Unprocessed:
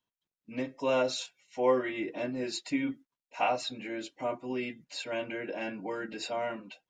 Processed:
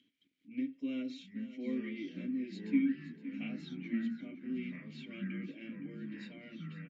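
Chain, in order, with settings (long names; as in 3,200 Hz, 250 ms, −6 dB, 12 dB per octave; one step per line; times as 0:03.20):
low-shelf EQ 210 Hz +6.5 dB
upward compression, threshold −41 dBFS
formant filter i
delay with pitch and tempo change per echo 670 ms, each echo −3 semitones, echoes 3, each echo −6 dB
repeating echo 516 ms, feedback 41%, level −14.5 dB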